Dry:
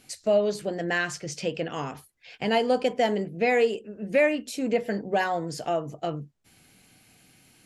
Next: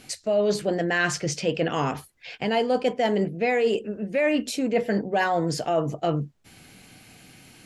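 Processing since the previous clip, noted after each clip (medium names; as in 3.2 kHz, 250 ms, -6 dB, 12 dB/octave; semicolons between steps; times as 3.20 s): treble shelf 7.8 kHz -6.5 dB; reverse; compression 6:1, threshold -29 dBFS, peak gain reduction 12 dB; reverse; trim +9 dB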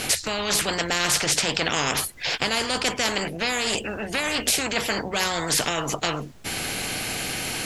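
spectrum-flattening compressor 4:1; trim +7 dB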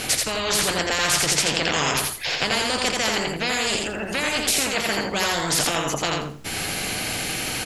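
feedback delay 84 ms, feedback 22%, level -3 dB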